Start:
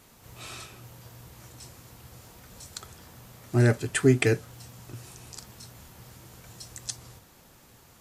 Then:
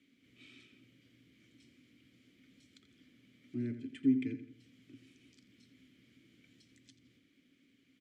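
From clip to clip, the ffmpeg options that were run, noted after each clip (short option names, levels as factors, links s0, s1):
-filter_complex "[0:a]acrossover=split=310[s0][s1];[s1]acompressor=threshold=0.00631:ratio=2[s2];[s0][s2]amix=inputs=2:normalize=0,asplit=3[s3][s4][s5];[s3]bandpass=f=270:t=q:w=8,volume=1[s6];[s4]bandpass=f=2290:t=q:w=8,volume=0.501[s7];[s5]bandpass=f=3010:t=q:w=8,volume=0.355[s8];[s6][s7][s8]amix=inputs=3:normalize=0,asplit=2[s9][s10];[s10]adelay=85,lowpass=f=4600:p=1,volume=0.282,asplit=2[s11][s12];[s12]adelay=85,lowpass=f=4600:p=1,volume=0.44,asplit=2[s13][s14];[s14]adelay=85,lowpass=f=4600:p=1,volume=0.44,asplit=2[s15][s16];[s16]adelay=85,lowpass=f=4600:p=1,volume=0.44,asplit=2[s17][s18];[s18]adelay=85,lowpass=f=4600:p=1,volume=0.44[s19];[s9][s11][s13][s15][s17][s19]amix=inputs=6:normalize=0"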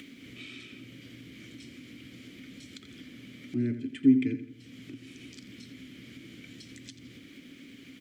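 -af "acompressor=mode=upward:threshold=0.00562:ratio=2.5,volume=2.51"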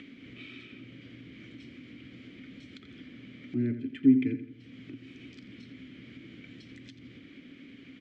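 -af "lowpass=3000"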